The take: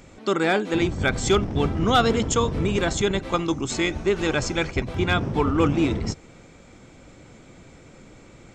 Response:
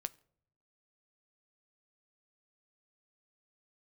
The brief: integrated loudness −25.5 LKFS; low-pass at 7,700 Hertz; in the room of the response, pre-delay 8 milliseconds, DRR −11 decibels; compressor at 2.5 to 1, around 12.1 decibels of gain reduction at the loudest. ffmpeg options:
-filter_complex "[0:a]lowpass=7700,acompressor=threshold=-34dB:ratio=2.5,asplit=2[link_01][link_02];[1:a]atrim=start_sample=2205,adelay=8[link_03];[link_02][link_03]afir=irnorm=-1:irlink=0,volume=12.5dB[link_04];[link_01][link_04]amix=inputs=2:normalize=0,volume=-3dB"

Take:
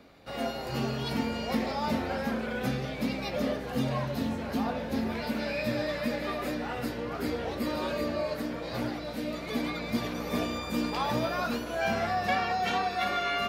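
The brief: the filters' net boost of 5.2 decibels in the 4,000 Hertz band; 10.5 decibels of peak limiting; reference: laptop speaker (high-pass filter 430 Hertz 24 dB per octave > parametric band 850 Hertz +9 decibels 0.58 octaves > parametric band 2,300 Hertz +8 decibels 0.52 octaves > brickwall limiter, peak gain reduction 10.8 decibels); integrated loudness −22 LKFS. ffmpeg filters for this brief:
ffmpeg -i in.wav -af "equalizer=frequency=4000:width_type=o:gain=4.5,alimiter=level_in=2dB:limit=-24dB:level=0:latency=1,volume=-2dB,highpass=frequency=430:width=0.5412,highpass=frequency=430:width=1.3066,equalizer=frequency=850:width_type=o:width=0.58:gain=9,equalizer=frequency=2300:width_type=o:width=0.52:gain=8,volume=15.5dB,alimiter=limit=-14.5dB:level=0:latency=1" out.wav

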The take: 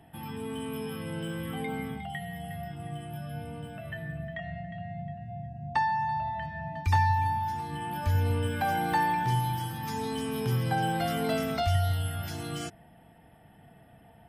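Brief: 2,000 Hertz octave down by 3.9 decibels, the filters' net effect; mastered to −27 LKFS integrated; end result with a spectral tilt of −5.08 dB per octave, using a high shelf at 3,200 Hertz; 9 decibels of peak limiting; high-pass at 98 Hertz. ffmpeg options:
ffmpeg -i in.wav -af "highpass=98,equalizer=frequency=2000:width_type=o:gain=-6.5,highshelf=frequency=3200:gain=5.5,volume=7.5dB,alimiter=limit=-16dB:level=0:latency=1" out.wav

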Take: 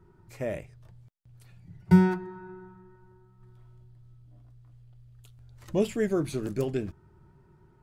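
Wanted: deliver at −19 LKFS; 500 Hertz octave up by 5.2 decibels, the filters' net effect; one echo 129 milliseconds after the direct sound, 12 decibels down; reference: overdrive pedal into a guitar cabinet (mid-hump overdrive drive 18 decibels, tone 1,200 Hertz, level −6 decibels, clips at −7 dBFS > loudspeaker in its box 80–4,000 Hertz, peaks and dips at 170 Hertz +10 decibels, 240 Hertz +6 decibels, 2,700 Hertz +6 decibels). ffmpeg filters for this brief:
ffmpeg -i in.wav -filter_complex "[0:a]equalizer=frequency=500:width_type=o:gain=6.5,aecho=1:1:129:0.251,asplit=2[link_01][link_02];[link_02]highpass=frequency=720:poles=1,volume=18dB,asoftclip=type=tanh:threshold=-7dB[link_03];[link_01][link_03]amix=inputs=2:normalize=0,lowpass=frequency=1200:poles=1,volume=-6dB,highpass=80,equalizer=frequency=170:width_type=q:width=4:gain=10,equalizer=frequency=240:width_type=q:width=4:gain=6,equalizer=frequency=2700:width_type=q:width=4:gain=6,lowpass=frequency=4000:width=0.5412,lowpass=frequency=4000:width=1.3066" out.wav

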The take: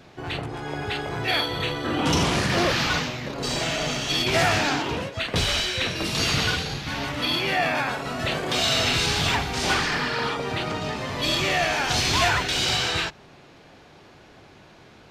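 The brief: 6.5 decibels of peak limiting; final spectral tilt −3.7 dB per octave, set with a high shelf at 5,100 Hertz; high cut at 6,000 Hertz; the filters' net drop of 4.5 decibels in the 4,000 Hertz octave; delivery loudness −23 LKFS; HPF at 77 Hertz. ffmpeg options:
ffmpeg -i in.wav -af "highpass=77,lowpass=6000,equalizer=frequency=4000:width_type=o:gain=-8,highshelf=frequency=5100:gain=6.5,volume=4dB,alimiter=limit=-13.5dB:level=0:latency=1" out.wav

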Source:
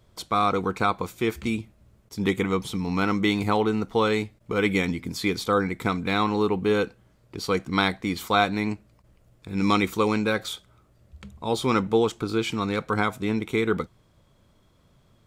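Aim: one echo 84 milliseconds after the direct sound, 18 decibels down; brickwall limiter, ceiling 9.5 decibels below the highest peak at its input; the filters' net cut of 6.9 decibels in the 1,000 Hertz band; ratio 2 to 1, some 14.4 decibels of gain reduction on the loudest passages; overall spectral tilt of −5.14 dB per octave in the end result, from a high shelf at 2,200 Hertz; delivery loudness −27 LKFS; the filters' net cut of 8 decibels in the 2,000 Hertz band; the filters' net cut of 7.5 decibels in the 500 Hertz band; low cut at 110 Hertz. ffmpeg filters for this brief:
ffmpeg -i in.wav -af "highpass=110,equalizer=frequency=500:width_type=o:gain=-8,equalizer=frequency=1000:width_type=o:gain=-3.5,equalizer=frequency=2000:width_type=o:gain=-5.5,highshelf=frequency=2200:gain=-6,acompressor=threshold=-50dB:ratio=2,alimiter=level_in=13dB:limit=-24dB:level=0:latency=1,volume=-13dB,aecho=1:1:84:0.126,volume=21dB" out.wav

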